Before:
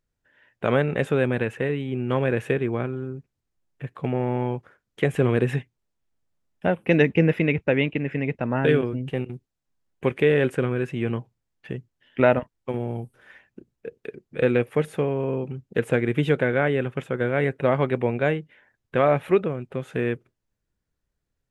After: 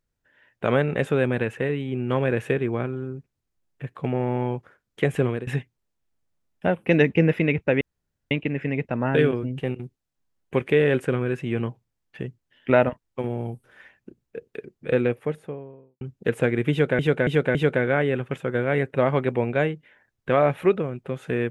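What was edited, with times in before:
5.17–5.47 fade out, to -19 dB
7.81 insert room tone 0.50 s
14.24–15.51 studio fade out
16.21–16.49 loop, 4 plays

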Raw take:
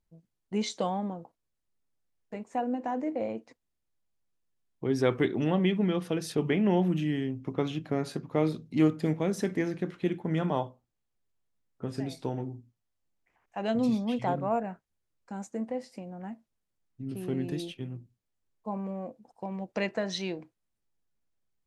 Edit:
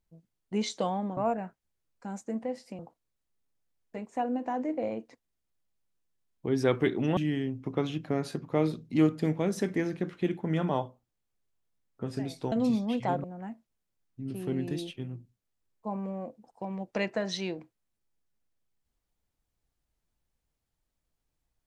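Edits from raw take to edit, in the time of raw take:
5.55–6.98 cut
12.33–13.71 cut
14.43–16.05 move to 1.17

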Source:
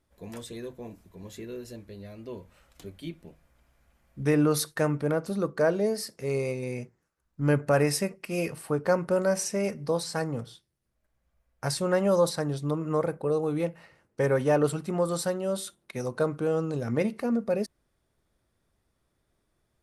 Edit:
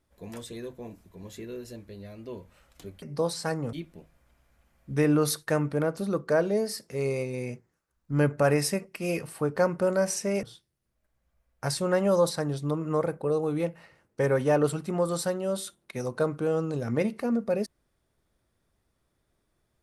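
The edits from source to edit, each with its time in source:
9.72–10.43 move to 3.02

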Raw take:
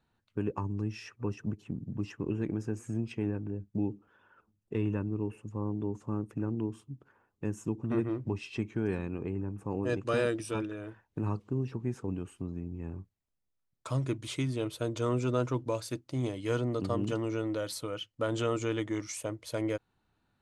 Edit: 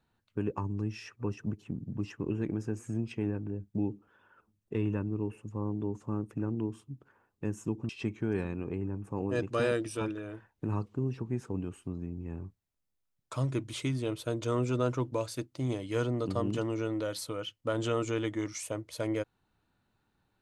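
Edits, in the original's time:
7.89–8.43 cut

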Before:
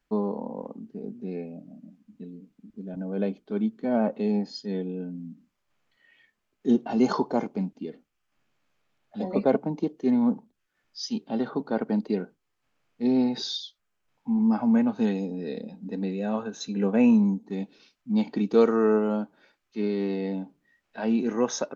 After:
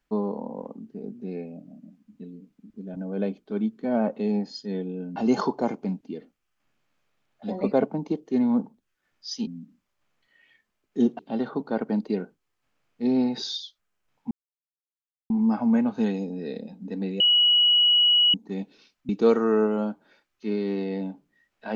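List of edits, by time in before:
5.16–6.88 move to 11.19
14.31 insert silence 0.99 s
16.21–17.35 bleep 2920 Hz -15.5 dBFS
18.1–18.41 cut

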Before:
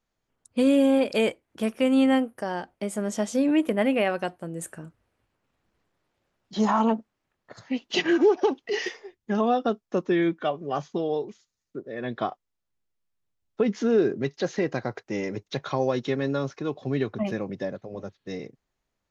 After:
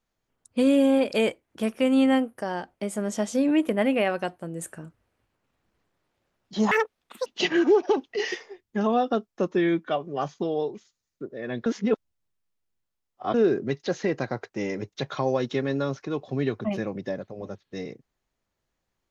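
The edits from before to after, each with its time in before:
6.71–7.8 speed 198%
12.2–13.88 reverse

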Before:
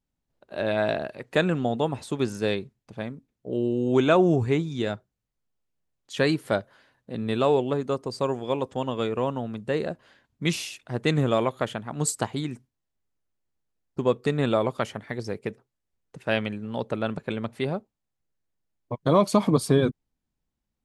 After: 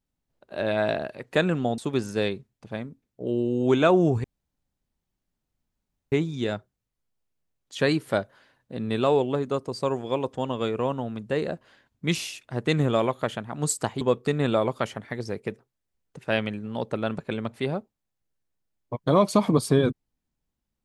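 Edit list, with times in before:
1.78–2.04 cut
4.5 insert room tone 1.88 s
12.39–14 cut

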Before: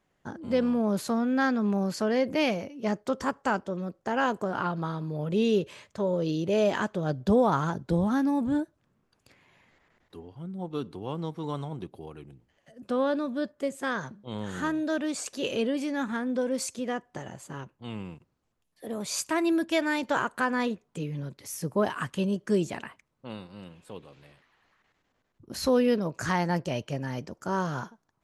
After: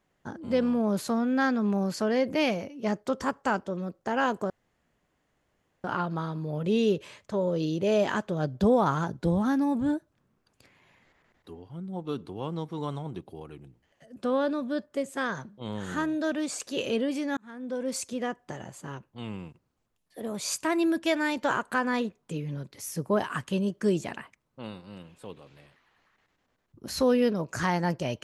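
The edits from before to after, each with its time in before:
4.5 insert room tone 1.34 s
16.03–16.67 fade in

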